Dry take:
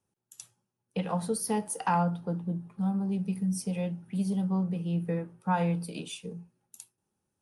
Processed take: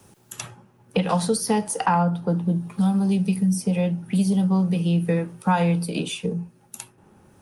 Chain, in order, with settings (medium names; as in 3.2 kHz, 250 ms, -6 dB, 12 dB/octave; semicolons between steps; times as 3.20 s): 1.09–1.86 s: peaking EQ 5.5 kHz +11 dB 2 oct; three bands compressed up and down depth 70%; trim +8.5 dB